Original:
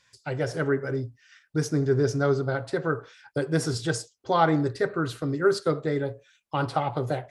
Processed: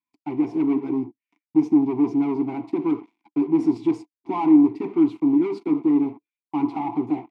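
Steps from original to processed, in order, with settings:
leveller curve on the samples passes 5
formant filter u
hollow resonant body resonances 230/330/690/1,000 Hz, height 12 dB, ringing for 35 ms
level −7.5 dB

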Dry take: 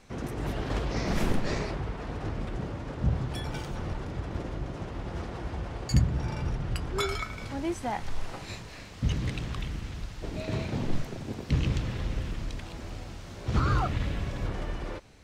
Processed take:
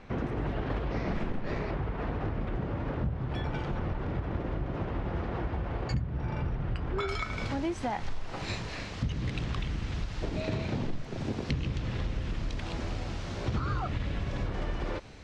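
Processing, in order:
low-pass filter 2,600 Hz 12 dB per octave, from 0:07.08 5,900 Hz
downward compressor 6 to 1, threshold −35 dBFS, peak gain reduction 17 dB
level +6.5 dB

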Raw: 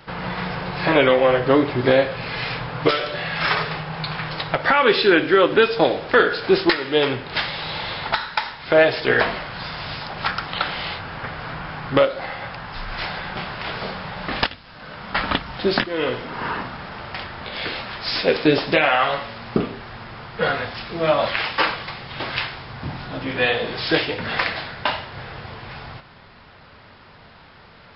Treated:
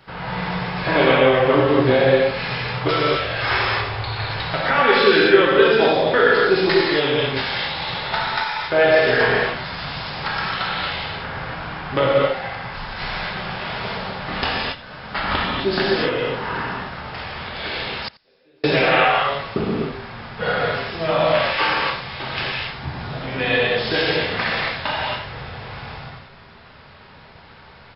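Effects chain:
0:03.15–0:04.29: frequency shifter −48 Hz
reverb whose tail is shaped and stops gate 300 ms flat, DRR −6 dB
0:18.08–0:18.64: gate with flip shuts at −16 dBFS, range −41 dB
on a send: single-tap delay 86 ms −21.5 dB
on the sum: level −5 dB

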